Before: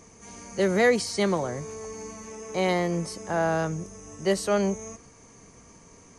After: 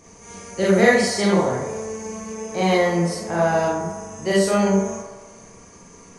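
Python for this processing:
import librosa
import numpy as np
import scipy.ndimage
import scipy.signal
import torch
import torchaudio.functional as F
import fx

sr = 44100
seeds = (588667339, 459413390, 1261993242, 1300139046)

y = fx.echo_wet_bandpass(x, sr, ms=65, feedback_pct=73, hz=870.0, wet_db=-8)
y = fx.rev_schroeder(y, sr, rt60_s=0.37, comb_ms=32, drr_db=-4.5)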